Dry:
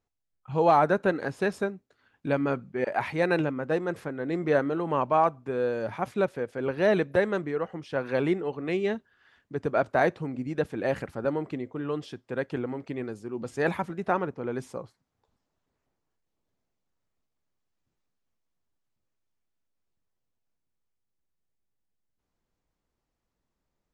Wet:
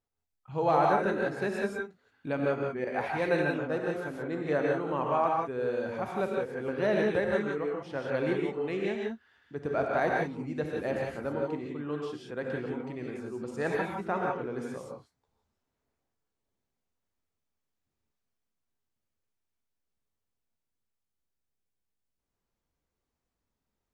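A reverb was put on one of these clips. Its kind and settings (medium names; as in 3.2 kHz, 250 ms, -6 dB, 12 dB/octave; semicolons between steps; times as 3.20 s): gated-style reverb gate 200 ms rising, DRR -1 dB; trim -6 dB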